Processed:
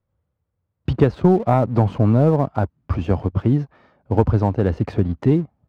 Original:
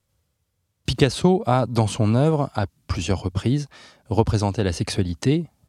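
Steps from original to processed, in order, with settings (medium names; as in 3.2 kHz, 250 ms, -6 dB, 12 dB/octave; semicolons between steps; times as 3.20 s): low-pass 1.3 kHz 12 dB/octave; waveshaping leveller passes 1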